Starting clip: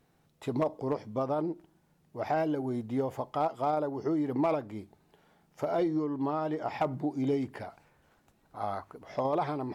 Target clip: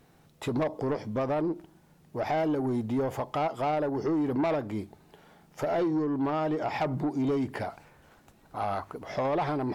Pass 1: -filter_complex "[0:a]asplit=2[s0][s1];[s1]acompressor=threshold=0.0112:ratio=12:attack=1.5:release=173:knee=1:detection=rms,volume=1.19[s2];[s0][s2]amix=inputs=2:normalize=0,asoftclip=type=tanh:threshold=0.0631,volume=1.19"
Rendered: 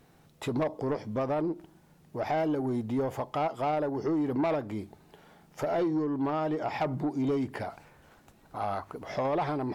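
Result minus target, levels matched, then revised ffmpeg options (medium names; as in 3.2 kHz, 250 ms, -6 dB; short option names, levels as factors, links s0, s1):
compression: peak gain reduction +6.5 dB
-filter_complex "[0:a]asplit=2[s0][s1];[s1]acompressor=threshold=0.0251:ratio=12:attack=1.5:release=173:knee=1:detection=rms,volume=1.19[s2];[s0][s2]amix=inputs=2:normalize=0,asoftclip=type=tanh:threshold=0.0631,volume=1.19"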